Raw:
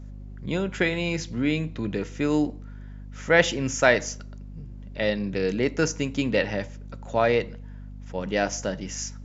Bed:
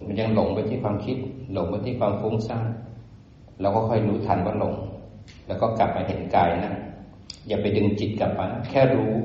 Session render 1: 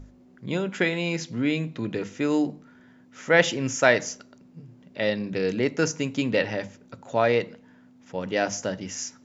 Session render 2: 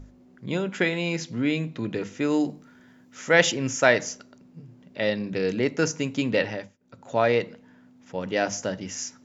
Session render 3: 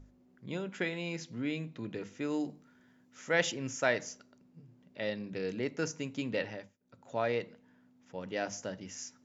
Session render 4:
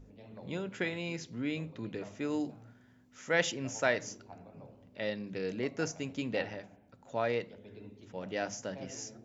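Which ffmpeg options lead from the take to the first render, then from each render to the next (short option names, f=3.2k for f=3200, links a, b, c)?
-af "bandreject=f=50:t=h:w=6,bandreject=f=100:t=h:w=6,bandreject=f=150:t=h:w=6,bandreject=f=200:t=h:w=6"
-filter_complex "[0:a]asettb=1/sr,asplit=3[a][b][c];[a]atrim=end=2.404[d];[b]atrim=start=2.4:end=3.52,asetpts=PTS-STARTPTS,afade=t=in:d=0.004:c=qsin,afade=t=out:st=1.116:d=0.004:c=qsin,aemphasis=mode=production:type=cd[e];[c]atrim=start=3.516[f];[d][e]acrossfade=d=0.004:c1=hsin:c2=qsin[g];[g][f]acrossfade=d=0.004:c1=qsin:c2=hsin,asplit=3[h][i][j];[h]atrim=end=6.77,asetpts=PTS-STARTPTS,afade=t=out:st=6.45:d=0.32:silence=0.0668344[k];[i]atrim=start=6.77:end=6.79,asetpts=PTS-STARTPTS,volume=-23.5dB[l];[j]atrim=start=6.79,asetpts=PTS-STARTPTS,afade=t=in:d=0.32:silence=0.0668344[m];[k][l][m]concat=n=3:v=0:a=1"
-af "volume=-10.5dB"
-filter_complex "[1:a]volume=-29dB[a];[0:a][a]amix=inputs=2:normalize=0"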